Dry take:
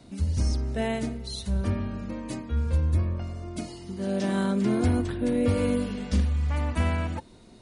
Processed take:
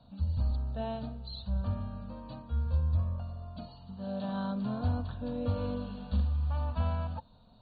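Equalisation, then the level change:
linear-phase brick-wall low-pass 4,600 Hz
phaser with its sweep stopped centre 860 Hz, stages 4
−4.0 dB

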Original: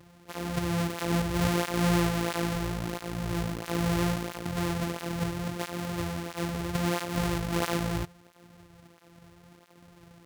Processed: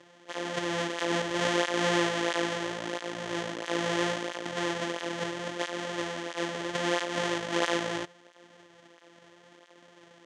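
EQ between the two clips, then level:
loudspeaker in its box 290–8,100 Hz, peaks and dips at 320 Hz +5 dB, 560 Hz +8 dB, 970 Hz +3 dB, 1,800 Hz +9 dB, 3,200 Hz +9 dB, 6,300 Hz +5 dB
−1.5 dB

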